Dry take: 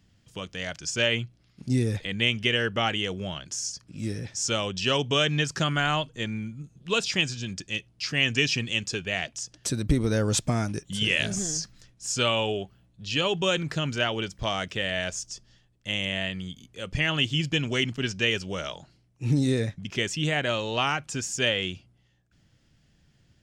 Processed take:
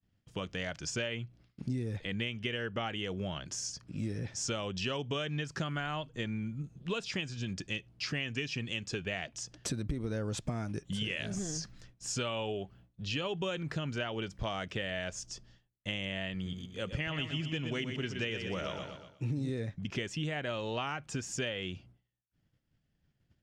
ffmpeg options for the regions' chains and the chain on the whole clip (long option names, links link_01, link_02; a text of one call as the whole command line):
ffmpeg -i in.wav -filter_complex "[0:a]asettb=1/sr,asplit=3[link_01][link_02][link_03];[link_01]atrim=end=16.344[link_04];[link_02]atrim=start=16.34:end=19.5,asetpts=PTS-STARTPTS,afade=type=in:duration=0.004:curve=qsin,afade=type=out:start_time=3.156:duration=0.004:curve=qsin,highpass=47,aecho=1:1:121|242|363|484|605:0.376|0.18|0.0866|0.0416|0.02,atrim=end_sample=139356[link_05];[link_03]atrim=start=19.496[link_06];[link_04][link_05]acrossfade=duration=0.004:curve1=hsin:curve2=qsin[link_07];[link_07][link_06]acrossfade=duration=0.004:curve1=qsin:curve2=hsin,agate=range=-33dB:threshold=-52dB:ratio=3:detection=peak,highshelf=frequency=4000:gain=-10.5,acompressor=threshold=-34dB:ratio=6,volume=1.5dB" out.wav